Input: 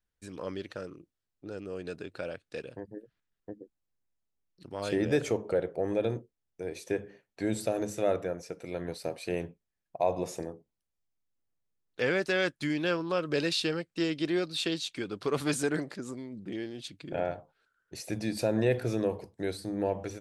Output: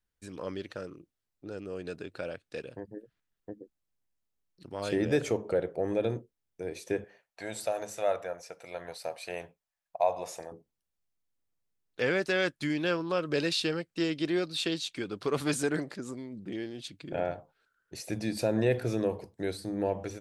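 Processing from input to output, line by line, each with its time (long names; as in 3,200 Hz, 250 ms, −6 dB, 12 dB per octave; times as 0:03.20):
0:07.04–0:10.52: low shelf with overshoot 470 Hz −11.5 dB, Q 1.5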